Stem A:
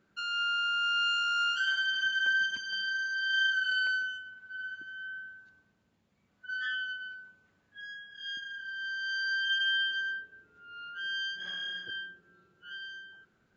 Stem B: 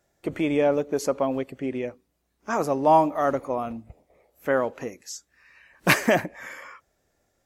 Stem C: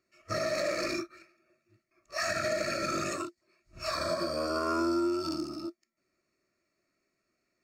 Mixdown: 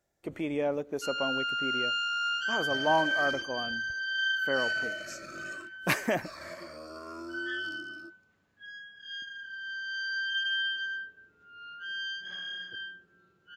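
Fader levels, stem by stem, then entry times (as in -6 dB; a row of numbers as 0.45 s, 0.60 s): -1.5 dB, -8.5 dB, -13.0 dB; 0.85 s, 0.00 s, 2.40 s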